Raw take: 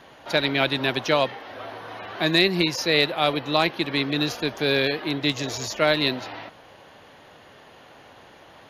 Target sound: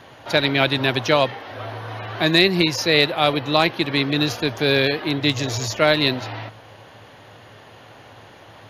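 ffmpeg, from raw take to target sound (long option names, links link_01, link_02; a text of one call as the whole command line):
ffmpeg -i in.wav -af "equalizer=frequency=110:width=4.8:gain=14.5,volume=3.5dB" out.wav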